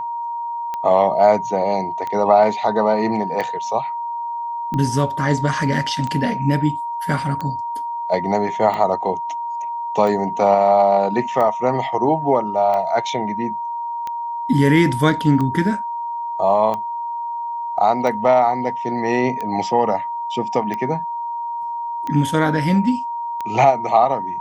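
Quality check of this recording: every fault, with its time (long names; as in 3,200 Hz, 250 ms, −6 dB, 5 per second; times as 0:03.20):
scratch tick 45 rpm −14 dBFS
whistle 940 Hz −23 dBFS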